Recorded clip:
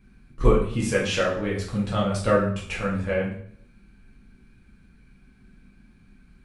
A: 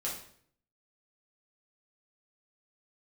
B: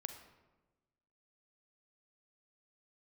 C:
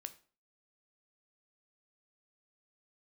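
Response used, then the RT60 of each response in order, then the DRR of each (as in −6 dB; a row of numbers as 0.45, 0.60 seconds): A; 0.60, 1.2, 0.40 seconds; −5.5, 7.0, 9.5 decibels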